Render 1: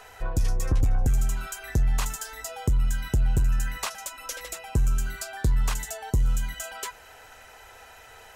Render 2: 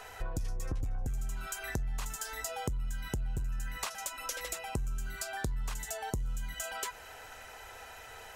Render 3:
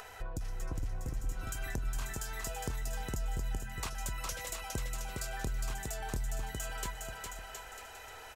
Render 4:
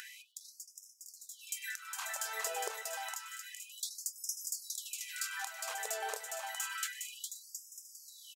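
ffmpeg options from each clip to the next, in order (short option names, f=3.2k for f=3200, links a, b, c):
-af "acompressor=threshold=-33dB:ratio=6"
-af "aecho=1:1:410|717.5|948.1|1121|1251:0.631|0.398|0.251|0.158|0.1,acompressor=mode=upward:threshold=-42dB:ratio=2.5,volume=-3.5dB"
-af "aecho=1:1:98:0.1,afftfilt=real='re*gte(b*sr/1024,380*pow(5000/380,0.5+0.5*sin(2*PI*0.29*pts/sr)))':imag='im*gte(b*sr/1024,380*pow(5000/380,0.5+0.5*sin(2*PI*0.29*pts/sr)))':win_size=1024:overlap=0.75,volume=4dB"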